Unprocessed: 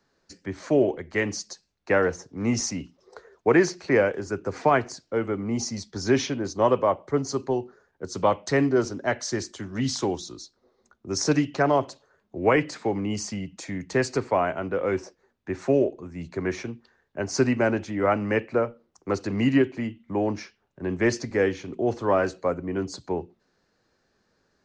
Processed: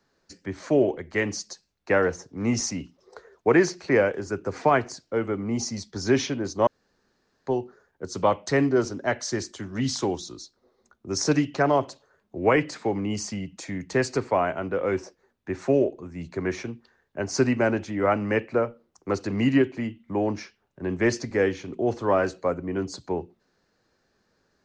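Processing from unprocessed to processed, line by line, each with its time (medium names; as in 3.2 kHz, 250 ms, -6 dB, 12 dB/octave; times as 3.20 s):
6.67–7.47 s: room tone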